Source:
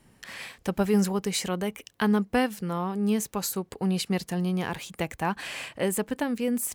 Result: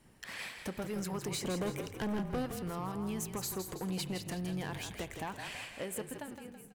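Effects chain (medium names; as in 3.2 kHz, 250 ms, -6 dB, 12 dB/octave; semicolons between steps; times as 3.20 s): fade out at the end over 2.08 s; harmonic-percussive split harmonic -6 dB; compression, threshold -33 dBFS, peak gain reduction 10.5 dB; 1.32–2.46 s: resonant low shelf 780 Hz +8.5 dB, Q 1.5; hard clipper -31.5 dBFS, distortion -7 dB; frequency-shifting echo 164 ms, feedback 46%, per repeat -40 Hz, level -7.5 dB; spring tank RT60 1.3 s, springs 32 ms, chirp 55 ms, DRR 14.5 dB; trim -1 dB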